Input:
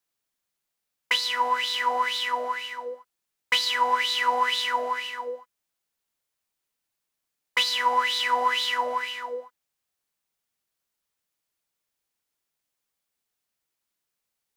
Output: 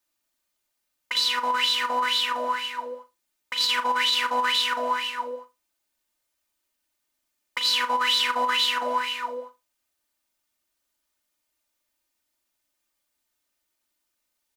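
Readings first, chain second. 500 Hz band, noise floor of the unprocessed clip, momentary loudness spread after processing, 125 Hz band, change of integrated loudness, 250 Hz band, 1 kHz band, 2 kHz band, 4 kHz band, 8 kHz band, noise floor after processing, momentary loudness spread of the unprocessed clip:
-0.5 dB, -83 dBFS, 13 LU, n/a, +1.0 dB, +6.0 dB, -0.5 dB, 0.0 dB, +3.5 dB, +2.5 dB, -79 dBFS, 13 LU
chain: comb 3.3 ms, depth 85%; negative-ratio compressor -23 dBFS, ratio -0.5; flutter echo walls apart 6.9 m, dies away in 0.22 s

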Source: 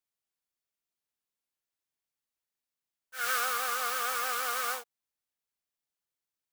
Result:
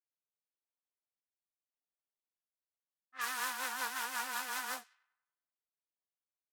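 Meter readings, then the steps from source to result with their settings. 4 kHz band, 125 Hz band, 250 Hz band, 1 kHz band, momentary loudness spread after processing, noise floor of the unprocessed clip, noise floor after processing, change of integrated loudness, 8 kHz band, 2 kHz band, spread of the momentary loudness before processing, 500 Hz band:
-5.5 dB, n/a, +3.0 dB, -7.5 dB, 6 LU, under -85 dBFS, under -85 dBFS, -7.0 dB, -6.0 dB, -5.0 dB, 7 LU, -12.5 dB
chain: rotary speaker horn 0.9 Hz, later 5.5 Hz, at 2.61; ring modulator 250 Hz; Bessel high-pass 400 Hz, order 2; thin delay 96 ms, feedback 57%, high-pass 1800 Hz, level -22.5 dB; low-pass opened by the level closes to 1100 Hz, open at -36.5 dBFS

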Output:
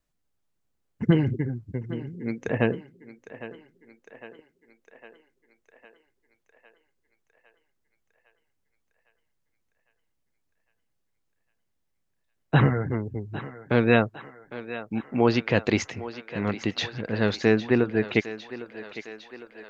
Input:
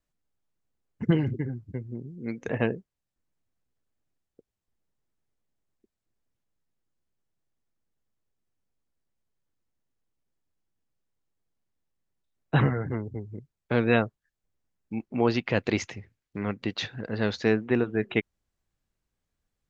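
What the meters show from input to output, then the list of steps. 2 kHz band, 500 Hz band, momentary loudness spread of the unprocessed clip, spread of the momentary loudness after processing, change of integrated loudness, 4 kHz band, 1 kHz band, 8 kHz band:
+3.5 dB, +3.0 dB, 14 LU, 18 LU, +2.5 dB, +3.5 dB, +3.5 dB, n/a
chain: thinning echo 0.806 s, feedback 67%, high-pass 340 Hz, level -13 dB; gain +3 dB

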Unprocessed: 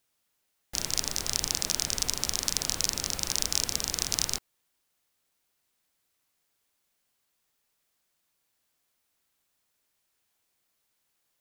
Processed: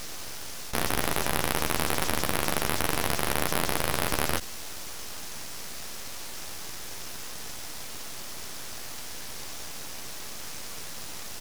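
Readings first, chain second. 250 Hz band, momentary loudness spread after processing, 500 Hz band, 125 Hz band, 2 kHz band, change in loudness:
+10.0 dB, 11 LU, +12.5 dB, +8.5 dB, +10.5 dB, -3.0 dB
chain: per-bin compression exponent 0.2; high shelf 3200 Hz -10 dB; doubler 13 ms -4 dB; full-wave rectifier; gain +3 dB

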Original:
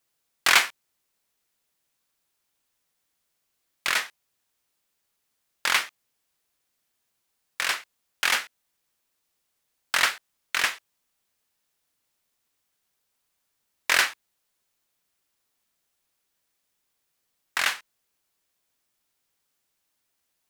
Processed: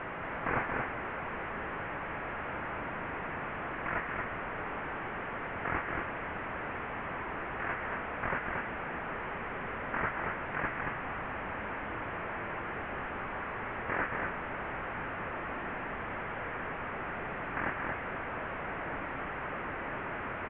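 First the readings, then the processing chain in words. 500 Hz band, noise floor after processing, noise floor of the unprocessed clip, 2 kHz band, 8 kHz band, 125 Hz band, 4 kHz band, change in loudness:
+8.0 dB, -39 dBFS, -77 dBFS, -6.0 dB, under -40 dB, n/a, -22.5 dB, -12.0 dB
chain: delta modulation 16 kbps, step -25.5 dBFS; LPF 1900 Hz 24 dB/oct; echo 0.229 s -3.5 dB; gain -5 dB

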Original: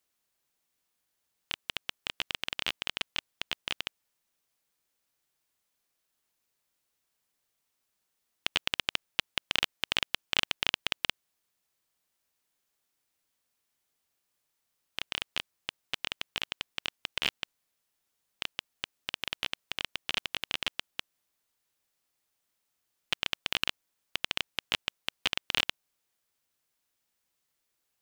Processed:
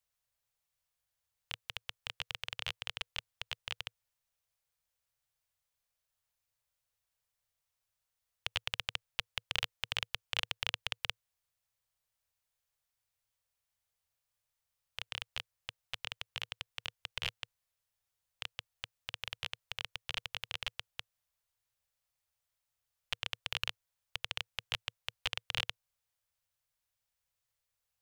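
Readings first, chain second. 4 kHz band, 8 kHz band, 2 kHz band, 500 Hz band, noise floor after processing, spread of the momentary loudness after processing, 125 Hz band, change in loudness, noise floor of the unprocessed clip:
-6.5 dB, -6.5 dB, -6.5 dB, -8.0 dB, under -85 dBFS, 10 LU, 0.0 dB, -6.5 dB, -81 dBFS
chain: EQ curve 110 Hz 0 dB, 340 Hz -30 dB, 480 Hz -9 dB; gain +2.5 dB

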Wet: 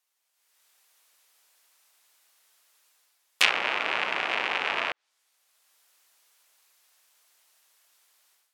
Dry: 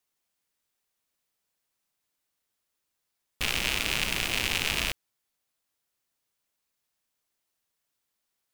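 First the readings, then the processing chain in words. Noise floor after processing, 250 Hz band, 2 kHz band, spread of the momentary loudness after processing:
-77 dBFS, -5.5 dB, +3.5 dB, 8 LU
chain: HPF 670 Hz 12 dB/oct; AGC gain up to 15 dB; treble ducked by the level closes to 1400 Hz, closed at -17 dBFS; gain +2.5 dB

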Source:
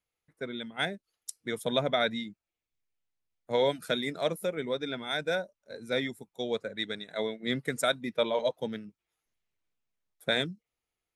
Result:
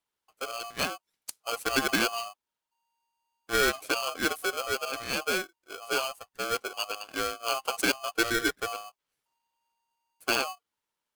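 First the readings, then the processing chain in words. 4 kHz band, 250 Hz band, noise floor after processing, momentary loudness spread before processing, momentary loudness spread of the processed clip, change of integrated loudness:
+2.0 dB, -0.5 dB, under -85 dBFS, 13 LU, 13 LU, +2.0 dB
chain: polarity switched at an audio rate 930 Hz; gain +1 dB

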